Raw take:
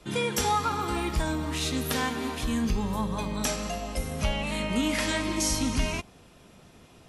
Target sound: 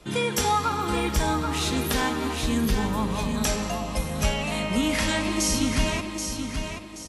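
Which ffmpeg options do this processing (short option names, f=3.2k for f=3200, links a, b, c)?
-af "aecho=1:1:779|1558|2337|3116:0.473|0.17|0.0613|0.0221,volume=2.5dB"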